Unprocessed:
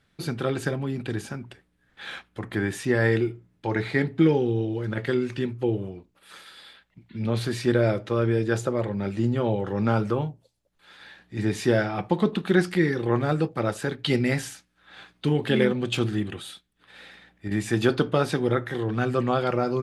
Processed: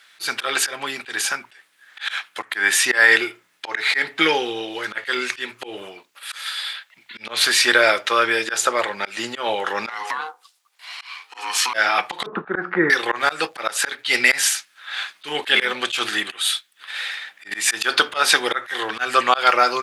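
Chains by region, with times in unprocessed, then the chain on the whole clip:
9.89–11.74 s: high-pass 290 Hz 6 dB/octave + ring modulator 620 Hz + compression, threshold -33 dBFS
12.26–12.90 s: Chebyshev band-pass 130–1400 Hz, order 3 + bass shelf 430 Hz +12 dB
whole clip: high-pass 1.4 kHz 12 dB/octave; slow attack 150 ms; loudness maximiser +21.5 dB; trim -1 dB

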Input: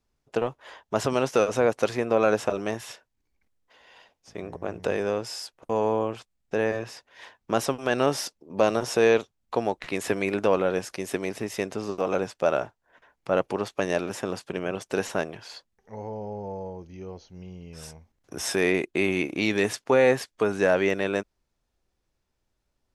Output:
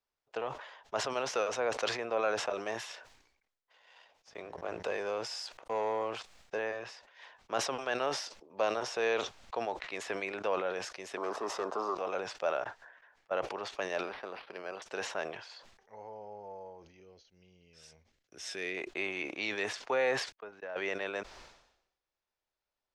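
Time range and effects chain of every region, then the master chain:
2.53–6.59 s: waveshaping leveller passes 1 + treble shelf 10 kHz +7.5 dB
11.17–11.95 s: high-pass 250 Hz + waveshaping leveller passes 3 + resonant high shelf 1.6 kHz -9.5 dB, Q 3
12.64–13.31 s: peaking EQ 1.7 kHz +8.5 dB 0.31 oct + slow attack 338 ms
14.03–14.82 s: high-pass 240 Hz 6 dB/octave + decimation joined by straight lines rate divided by 6×
17.00–18.77 s: gate -51 dBFS, range -18 dB + peaking EQ 920 Hz -14 dB 1.4 oct
20.32–20.76 s: gate -22 dBFS, range -48 dB + compression 3:1, threshold -30 dBFS + distance through air 160 m
whole clip: three-band isolator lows -16 dB, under 470 Hz, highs -24 dB, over 6.6 kHz; decay stretcher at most 70 dB/s; trim -7 dB

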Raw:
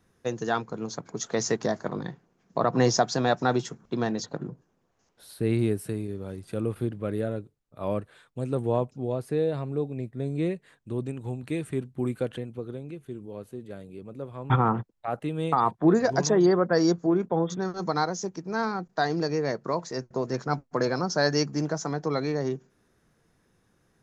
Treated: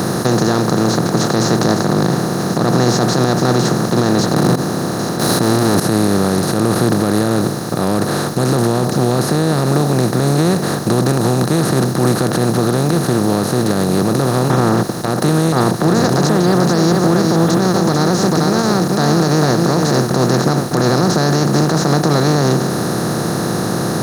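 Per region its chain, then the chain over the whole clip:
4.36–5.80 s: waveshaping leveller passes 5 + compressor with a negative ratio -31 dBFS + small resonant body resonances 260/4000 Hz, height 13 dB, ringing for 90 ms
16.10–20.10 s: treble shelf 9.1 kHz +5 dB + delay 443 ms -13 dB
whole clip: spectral levelling over time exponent 0.2; peaking EQ 170 Hz +10 dB 1 oct; peak limiter -4 dBFS

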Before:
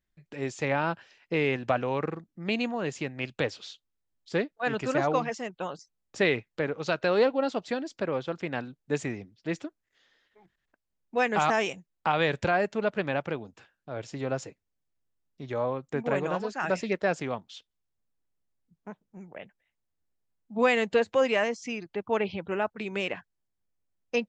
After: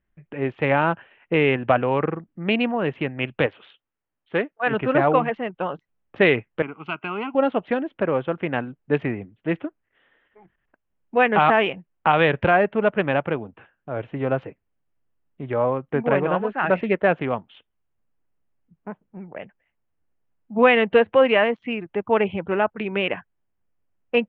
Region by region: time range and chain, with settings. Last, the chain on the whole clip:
3.46–4.71 s: low-pass 2.1 kHz 6 dB/octave + tilt EQ +2.5 dB/octave
6.62–7.35 s: high-pass 240 Hz + peaking EQ 700 Hz -5.5 dB 1.9 oct + static phaser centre 2.6 kHz, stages 8
whole clip: local Wiener filter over 9 samples; Chebyshev low-pass 3.1 kHz, order 4; trim +8.5 dB

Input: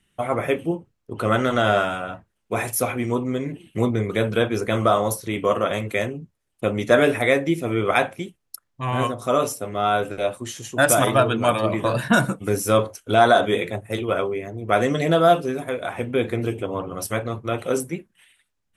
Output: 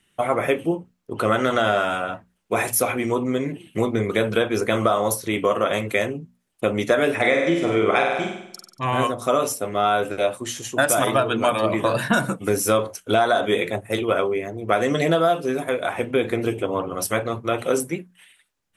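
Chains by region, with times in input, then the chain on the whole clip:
7.15–8.86 s: low-pass 7.8 kHz 24 dB/octave + flutter echo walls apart 8.1 m, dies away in 0.74 s
whole clip: bass shelf 120 Hz -9.5 dB; compression, threshold -19 dBFS; hum notches 60/120/180/240 Hz; trim +4 dB

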